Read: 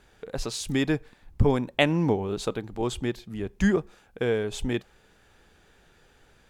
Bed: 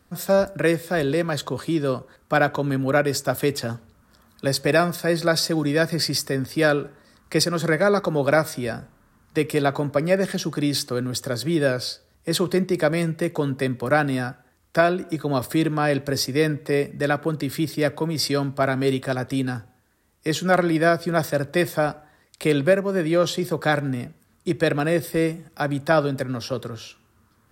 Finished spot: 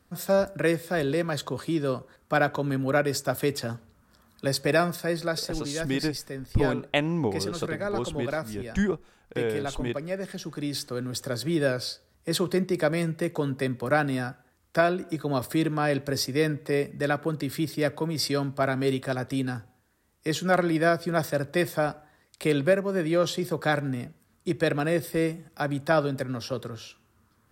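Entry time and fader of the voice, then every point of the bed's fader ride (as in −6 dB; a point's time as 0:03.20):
5.15 s, −3.0 dB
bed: 0:04.90 −4 dB
0:05.64 −12 dB
0:10.14 −12 dB
0:11.34 −4 dB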